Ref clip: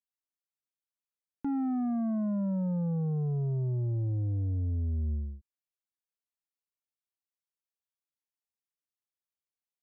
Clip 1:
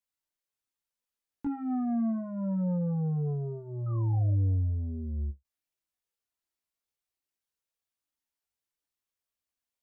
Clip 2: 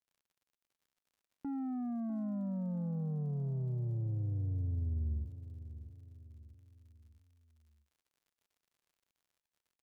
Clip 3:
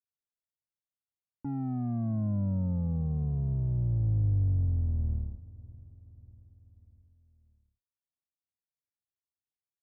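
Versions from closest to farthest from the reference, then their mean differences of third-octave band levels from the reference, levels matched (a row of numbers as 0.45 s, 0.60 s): 1, 2, 3; 1.5 dB, 4.5 dB, 7.0 dB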